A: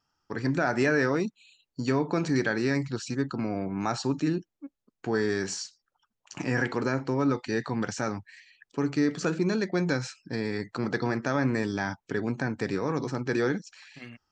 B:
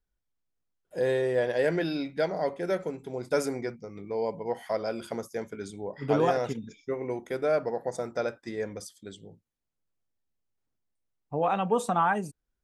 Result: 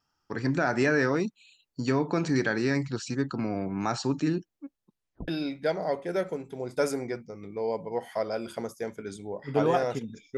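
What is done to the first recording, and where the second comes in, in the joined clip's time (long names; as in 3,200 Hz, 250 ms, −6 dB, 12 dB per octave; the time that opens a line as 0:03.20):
A
0:04.82: tape stop 0.46 s
0:05.28: continue with B from 0:01.82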